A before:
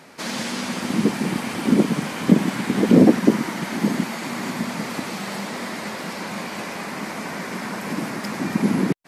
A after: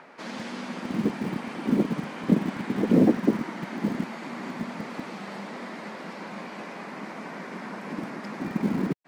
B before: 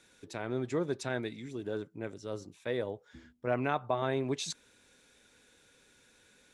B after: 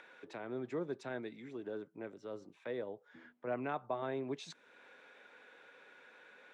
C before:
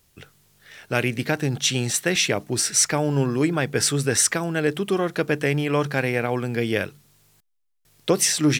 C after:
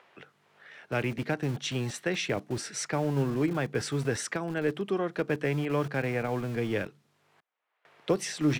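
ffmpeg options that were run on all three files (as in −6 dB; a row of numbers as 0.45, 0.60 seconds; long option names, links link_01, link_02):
-filter_complex "[0:a]aemphasis=mode=reproduction:type=75fm,acrossover=split=130|480|2900[link_01][link_02][link_03][link_04];[link_01]acrusher=bits=5:mix=0:aa=0.000001[link_05];[link_03]acompressor=mode=upward:threshold=-37dB:ratio=2.5[link_06];[link_05][link_02][link_06][link_04]amix=inputs=4:normalize=0,volume=-7dB"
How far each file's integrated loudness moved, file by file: −6.5, −7.0, −8.5 LU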